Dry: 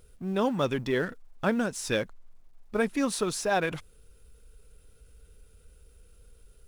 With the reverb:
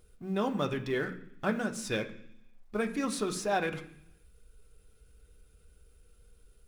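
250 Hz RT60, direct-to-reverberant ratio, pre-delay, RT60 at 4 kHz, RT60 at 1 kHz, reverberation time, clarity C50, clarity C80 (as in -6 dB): 0.85 s, 3.5 dB, 3 ms, 0.90 s, 0.65 s, 0.70 s, 12.5 dB, 15.5 dB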